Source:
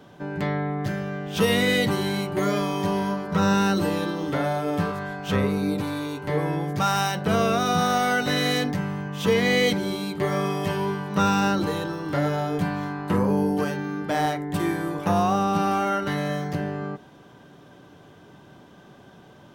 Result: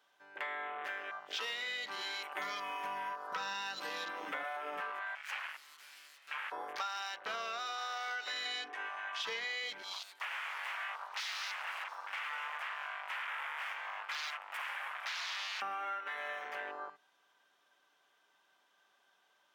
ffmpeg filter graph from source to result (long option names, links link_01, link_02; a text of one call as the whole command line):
ffmpeg -i in.wav -filter_complex "[0:a]asettb=1/sr,asplit=3[link_01][link_02][link_03];[link_01]atrim=end=2.234[link_04];[link_02]atrim=start=2.23:end=4.57,asetpts=PTS-STARTPTS,afade=type=in:duration=0.004:curve=qsin,afade=type=out:start_time=2.336:duration=0.004:curve=qsin,highshelf=frequency=8300:gain=5.5,aecho=1:1:4:0.58,atrim=end_sample=103194,aeval=exprs='sgn(val(0))*max(abs(val(0))-0.00266,0)':channel_layout=same[link_05];[link_03]atrim=start=4.566[link_06];[link_04][link_05]acrossfade=duration=0.004:curve1=hsin:curve2=qsin[link_07];[link_07][link_06]acrossfade=duration=0.004:curve1=qsin:curve2=hsin,asettb=1/sr,asplit=3[link_08][link_09][link_10];[link_08]atrim=end=5.154[link_11];[link_09]atrim=start=5.15:end=6.52,asetpts=PTS-STARTPTS,afade=type=in:duration=0.004:curve=qsin,afade=type=out:start_time=1.366:duration=0.004:curve=qsin,highpass=frequency=570:width=0.5412,highpass=frequency=570:width=1.3066,aeval=exprs='abs(val(0))':channel_layout=same[link_12];[link_10]atrim=start=6.516[link_13];[link_11][link_12]acrossfade=duration=0.004:curve1=hsin:curve2=qsin[link_14];[link_14][link_13]acrossfade=duration=0.004:curve1=qsin:curve2=hsin,asettb=1/sr,asplit=3[link_15][link_16][link_17];[link_15]atrim=end=8.454[link_18];[link_16]atrim=start=8.45:end=9.23,asetpts=PTS-STARTPTS,afade=type=in:duration=0.004:curve=qsin,afade=type=out:start_time=0.776:duration=0.004:curve=qsin,lowpass=frequency=11000:width=0.5412,lowpass=frequency=11000:width=1.3066,aecho=1:1:2.7:0.79,atrim=end_sample=34398[link_19];[link_17]atrim=start=9.226[link_20];[link_18][link_19]acrossfade=duration=0.004:curve1=hsin:curve2=qsin[link_21];[link_21][link_20]acrossfade=duration=0.004:curve1=qsin:curve2=hsin,asettb=1/sr,asplit=3[link_22][link_23][link_24];[link_22]atrim=end=9.934[link_25];[link_23]atrim=start=9.93:end=15.62,asetpts=PTS-STARTPTS,afade=type=in:duration=0.004:curve=qsin,afade=type=out:start_time=5.686:duration=0.004:curve=qsin,aeval=exprs='0.0376*(abs(mod(val(0)/0.0376+3,4)-2)-1)':channel_layout=same,highpass=570[link_26];[link_24]atrim=start=15.616[link_27];[link_25][link_26]acrossfade=duration=0.004:curve1=hsin:curve2=qsin[link_28];[link_28][link_27]acrossfade=duration=0.004:curve1=qsin:curve2=hsin,highpass=1200,afwtdn=0.0126,acompressor=threshold=-39dB:ratio=10,volume=2.5dB" out.wav